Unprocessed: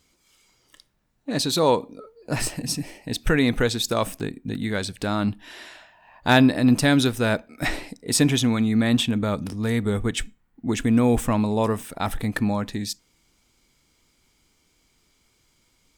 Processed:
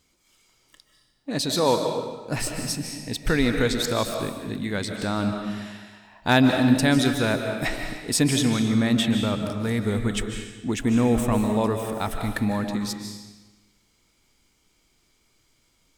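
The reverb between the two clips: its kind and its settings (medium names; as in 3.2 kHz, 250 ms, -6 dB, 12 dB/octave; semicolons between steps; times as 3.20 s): algorithmic reverb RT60 1.2 s, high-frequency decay 0.95×, pre-delay 110 ms, DRR 4.5 dB; trim -2 dB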